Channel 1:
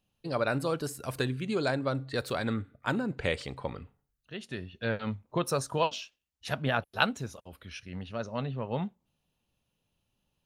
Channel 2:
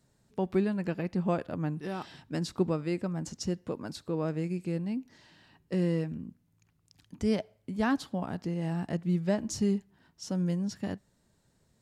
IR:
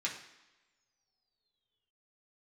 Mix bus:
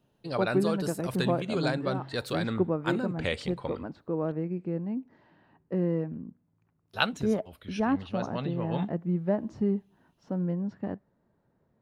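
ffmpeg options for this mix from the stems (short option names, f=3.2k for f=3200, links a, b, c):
-filter_complex "[0:a]equalizer=f=3.6k:t=o:w=0.77:g=3,volume=-1dB,asplit=3[a][b][c];[a]atrim=end=4.32,asetpts=PTS-STARTPTS,afade=t=out:st=4.316:d=0.004:c=hsin[d];[b]atrim=start=4.32:end=6.89,asetpts=PTS-STARTPTS,volume=0[e];[c]atrim=start=6.89,asetpts=PTS-STARTPTS,afade=t=in:d=0.004:c=hsin[f];[d][e][f]concat=n=3:v=0:a=1[g];[1:a]lowpass=1.2k,lowshelf=f=110:g=-12,volume=3dB[h];[g][h]amix=inputs=2:normalize=0"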